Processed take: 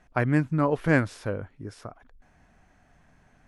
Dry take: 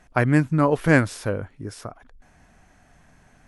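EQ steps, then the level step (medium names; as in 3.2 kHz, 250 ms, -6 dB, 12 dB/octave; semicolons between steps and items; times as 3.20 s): treble shelf 6.8 kHz -10.5 dB; -4.5 dB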